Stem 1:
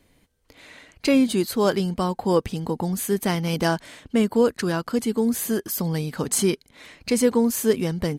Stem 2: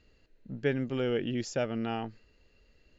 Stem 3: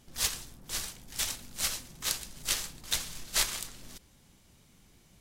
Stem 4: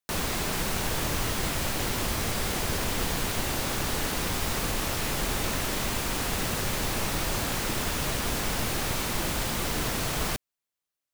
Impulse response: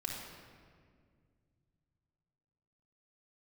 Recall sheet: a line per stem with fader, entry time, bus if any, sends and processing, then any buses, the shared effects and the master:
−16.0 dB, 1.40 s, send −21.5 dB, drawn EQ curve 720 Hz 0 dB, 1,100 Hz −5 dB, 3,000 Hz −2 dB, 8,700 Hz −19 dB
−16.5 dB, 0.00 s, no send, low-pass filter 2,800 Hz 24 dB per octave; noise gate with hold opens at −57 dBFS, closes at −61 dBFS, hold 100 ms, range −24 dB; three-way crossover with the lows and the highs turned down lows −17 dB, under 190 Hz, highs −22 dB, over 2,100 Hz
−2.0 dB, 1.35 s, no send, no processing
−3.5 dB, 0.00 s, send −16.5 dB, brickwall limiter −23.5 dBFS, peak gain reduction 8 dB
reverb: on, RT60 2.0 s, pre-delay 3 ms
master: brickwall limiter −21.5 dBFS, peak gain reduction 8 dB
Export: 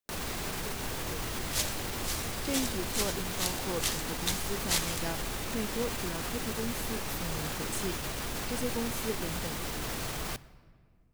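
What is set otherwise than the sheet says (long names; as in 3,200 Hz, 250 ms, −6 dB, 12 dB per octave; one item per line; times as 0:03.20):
stem 1: missing drawn EQ curve 720 Hz 0 dB, 1,100 Hz −5 dB, 3,000 Hz −2 dB, 8,700 Hz −19 dB
master: missing brickwall limiter −21.5 dBFS, peak gain reduction 8 dB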